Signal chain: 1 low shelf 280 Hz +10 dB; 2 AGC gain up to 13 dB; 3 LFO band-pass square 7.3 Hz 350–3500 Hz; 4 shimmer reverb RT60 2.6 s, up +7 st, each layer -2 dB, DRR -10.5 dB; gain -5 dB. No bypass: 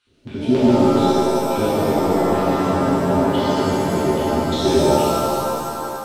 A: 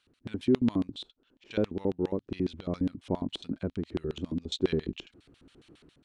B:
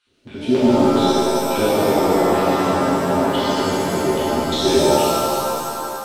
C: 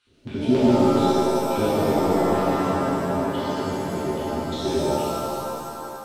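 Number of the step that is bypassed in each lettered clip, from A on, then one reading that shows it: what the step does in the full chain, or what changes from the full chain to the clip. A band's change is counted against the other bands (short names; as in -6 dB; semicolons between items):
4, 1 kHz band -15.0 dB; 1, 125 Hz band -5.5 dB; 2, crest factor change +1.5 dB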